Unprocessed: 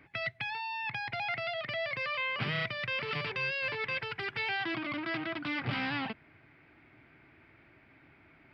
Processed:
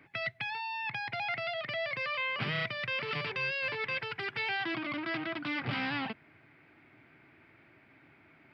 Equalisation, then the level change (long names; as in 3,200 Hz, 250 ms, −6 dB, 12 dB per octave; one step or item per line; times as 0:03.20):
high-pass filter 100 Hz
0.0 dB